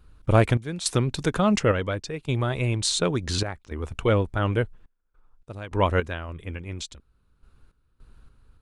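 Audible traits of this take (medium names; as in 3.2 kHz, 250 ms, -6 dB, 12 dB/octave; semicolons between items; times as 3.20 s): random-step tremolo, depth 95%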